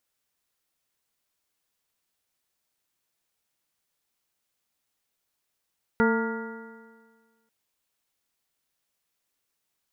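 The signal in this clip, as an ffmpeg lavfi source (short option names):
-f lavfi -i "aevalsrc='0.0944*pow(10,-3*t/1.6)*sin(2*PI*224.31*t)+0.0841*pow(10,-3*t/1.6)*sin(2*PI*450.5*t)+0.0141*pow(10,-3*t/1.6)*sin(2*PI*680.41*t)+0.0473*pow(10,-3*t/1.6)*sin(2*PI*915.85*t)+0.0126*pow(10,-3*t/1.6)*sin(2*PI*1158.54*t)+0.0668*pow(10,-3*t/1.6)*sin(2*PI*1410.11*t)+0.0106*pow(10,-3*t/1.6)*sin(2*PI*1672.11*t)+0.0237*pow(10,-3*t/1.6)*sin(2*PI*1945.95*t)':d=1.49:s=44100"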